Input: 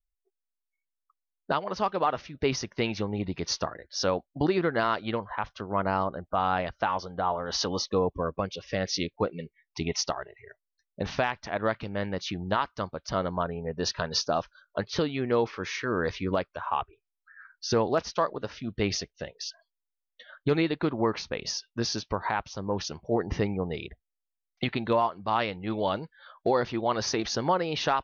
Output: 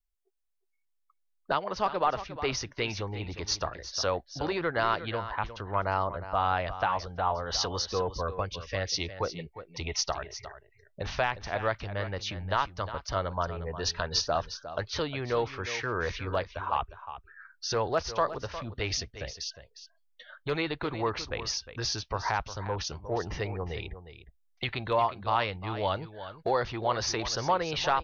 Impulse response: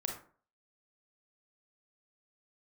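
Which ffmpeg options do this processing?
-filter_complex "[0:a]asubboost=boost=6:cutoff=84,acrossover=split=450[s0][s1];[s0]asoftclip=type=tanh:threshold=0.02[s2];[s2][s1]amix=inputs=2:normalize=0,aecho=1:1:357:0.237"

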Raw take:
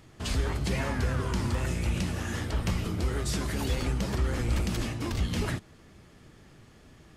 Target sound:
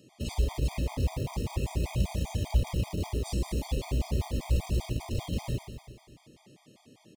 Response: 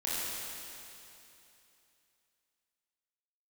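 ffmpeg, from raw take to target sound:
-filter_complex "[0:a]asettb=1/sr,asplit=3[s0][s1][s2];[s0]atrim=end=1.924[s3];[s1]atrim=start=1.92:end=2.63,asetpts=PTS-STARTPTS,afade=t=in:d=0.004:c=qsin,afade=t=out:st=0.706:d=0.004:c=qsin,aecho=1:1:1.3:0.63,atrim=end_sample=31311[s4];[s2]atrim=start=2.626[s5];[s3][s4]acrossfade=d=0.004:c1=hsin:c2=qsin[s6];[s6][s5]acrossfade=d=0.004:c1=qsin:c2=hsin,acrossover=split=130[s7][s8];[s7]acrusher=bits=5:mix=0:aa=0.000001[s9];[s8]alimiter=level_in=2.24:limit=0.0631:level=0:latency=1,volume=0.447[s10];[s9][s10]amix=inputs=2:normalize=0,asuperstop=centerf=1500:order=4:qfactor=1.3,aecho=1:1:119|238|357|476|595|714|833|952:0.398|0.239|0.143|0.086|0.0516|0.031|0.0186|0.0111,afftfilt=real='re*gt(sin(2*PI*5.1*pts/sr)*(1-2*mod(floor(b*sr/1024/630),2)),0)':imag='im*gt(sin(2*PI*5.1*pts/sr)*(1-2*mod(floor(b*sr/1024/630),2)),0)':win_size=1024:overlap=0.75,volume=1.26"

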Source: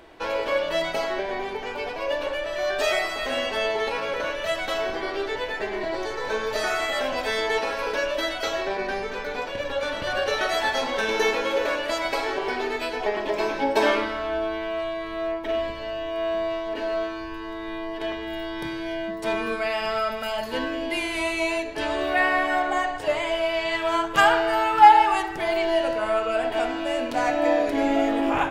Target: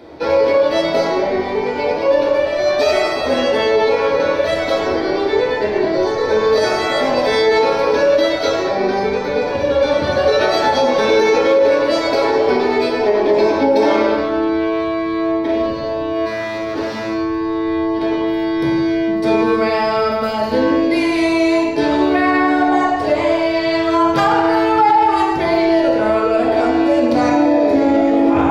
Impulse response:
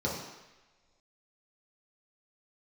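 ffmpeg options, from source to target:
-filter_complex "[0:a]asplit=3[s0][s1][s2];[s0]afade=t=out:st=16.25:d=0.02[s3];[s1]aeval=exprs='0.0447*(abs(mod(val(0)/0.0447+3,4)-2)-1)':c=same,afade=t=in:st=16.25:d=0.02,afade=t=out:st=17.13:d=0.02[s4];[s2]afade=t=in:st=17.13:d=0.02[s5];[s3][s4][s5]amix=inputs=3:normalize=0[s6];[1:a]atrim=start_sample=2205,afade=t=out:st=0.29:d=0.01,atrim=end_sample=13230[s7];[s6][s7]afir=irnorm=-1:irlink=0,alimiter=level_in=2:limit=0.891:release=50:level=0:latency=1,volume=0.596"

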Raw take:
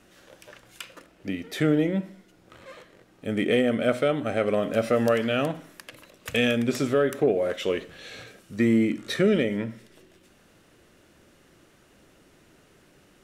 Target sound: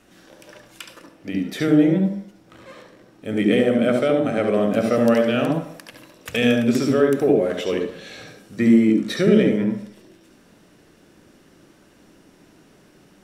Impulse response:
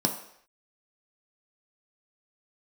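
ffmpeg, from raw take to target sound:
-filter_complex "[0:a]bandreject=f=50:t=h:w=6,bandreject=f=100:t=h:w=6,bandreject=f=150:t=h:w=6,bandreject=f=200:t=h:w=6,asplit=2[s0][s1];[1:a]atrim=start_sample=2205,adelay=70[s2];[s1][s2]afir=irnorm=-1:irlink=0,volume=0.237[s3];[s0][s3]amix=inputs=2:normalize=0,volume=1.19"

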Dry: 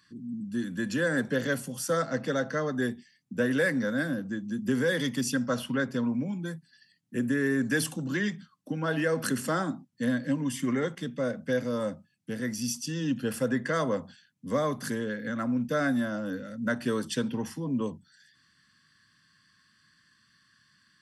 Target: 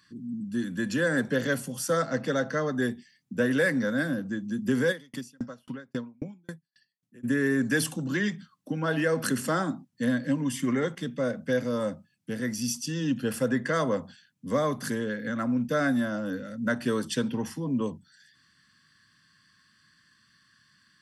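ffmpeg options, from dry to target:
-filter_complex "[0:a]asplit=3[s0][s1][s2];[s0]afade=t=out:st=4.91:d=0.02[s3];[s1]aeval=exprs='val(0)*pow(10,-39*if(lt(mod(3.7*n/s,1),2*abs(3.7)/1000),1-mod(3.7*n/s,1)/(2*abs(3.7)/1000),(mod(3.7*n/s,1)-2*abs(3.7)/1000)/(1-2*abs(3.7)/1000))/20)':c=same,afade=t=in:st=4.91:d=0.02,afade=t=out:st=7.23:d=0.02[s4];[s2]afade=t=in:st=7.23:d=0.02[s5];[s3][s4][s5]amix=inputs=3:normalize=0,volume=1.19"

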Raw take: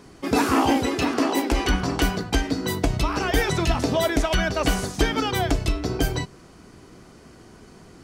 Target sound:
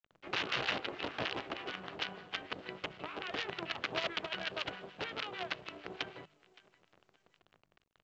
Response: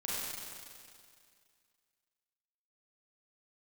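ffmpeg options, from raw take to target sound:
-filter_complex "[0:a]acrossover=split=180 3000:gain=0.0794 1 0.0891[s0][s1][s2];[s0][s1][s2]amix=inputs=3:normalize=0,aeval=exprs='(mod(5.96*val(0)+1,2)-1)/5.96':c=same,acrusher=bits=4:dc=4:mix=0:aa=0.000001,highpass=110,equalizer=f=260:t=q:w=4:g=-10,equalizer=f=930:t=q:w=4:g=-3,equalizer=f=2900:t=q:w=4:g=5,lowpass=f=4000:w=0.5412,lowpass=f=4000:w=1.3066,bandreject=f=50:t=h:w=6,bandreject=f=100:t=h:w=6,bandreject=f=150:t=h:w=6,bandreject=f=200:t=h:w=6,asplit=2[s3][s4];[s4]aecho=0:1:567|1134:0.0668|0.018[s5];[s3][s5]amix=inputs=2:normalize=0,acrossover=split=1100[s6][s7];[s6]aeval=exprs='val(0)*(1-0.7/2+0.7/2*cos(2*PI*6.6*n/s))':c=same[s8];[s7]aeval=exprs='val(0)*(1-0.7/2-0.7/2*cos(2*PI*6.6*n/s))':c=same[s9];[s8][s9]amix=inputs=2:normalize=0,volume=0.355" -ar 16000 -c:a pcm_mulaw

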